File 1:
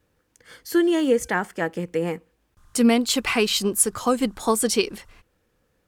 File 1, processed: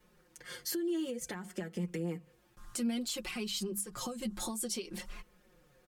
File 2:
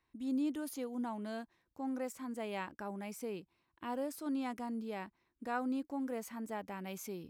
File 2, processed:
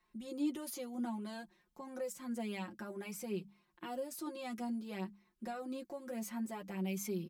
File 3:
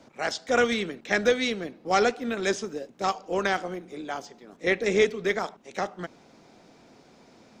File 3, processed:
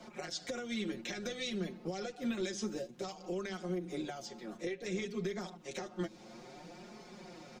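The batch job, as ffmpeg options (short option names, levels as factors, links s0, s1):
-filter_complex "[0:a]flanger=delay=4.6:depth=4.7:regen=19:speed=0.57:shape=sinusoidal,aecho=1:1:5.6:0.81,acompressor=threshold=0.0282:ratio=8,alimiter=level_in=2:limit=0.0631:level=0:latency=1:release=206,volume=0.501,acrossover=split=420|3000[s0][s1][s2];[s1]acompressor=threshold=0.002:ratio=2.5[s3];[s0][s3][s2]amix=inputs=3:normalize=0,bandreject=f=50:t=h:w=6,bandreject=f=100:t=h:w=6,bandreject=f=150:t=h:w=6,bandreject=f=200:t=h:w=6,volume=1.68"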